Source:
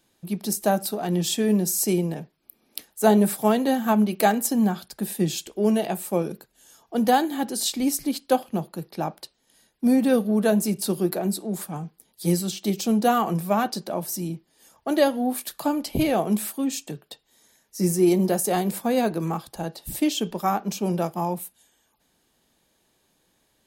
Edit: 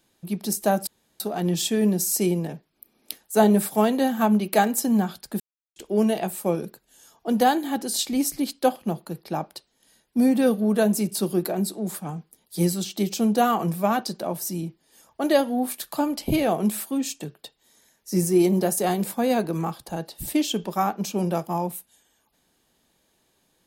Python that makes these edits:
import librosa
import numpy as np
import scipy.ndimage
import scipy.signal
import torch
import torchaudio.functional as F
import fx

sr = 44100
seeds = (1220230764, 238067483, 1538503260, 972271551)

y = fx.edit(x, sr, fx.insert_room_tone(at_s=0.87, length_s=0.33),
    fx.silence(start_s=5.07, length_s=0.36), tone=tone)